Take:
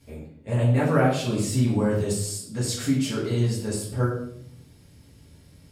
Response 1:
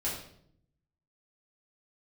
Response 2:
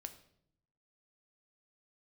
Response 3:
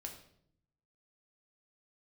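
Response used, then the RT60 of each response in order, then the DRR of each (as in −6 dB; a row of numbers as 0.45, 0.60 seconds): 1; 0.65, 0.70, 0.65 seconds; −8.0, 7.5, 1.5 decibels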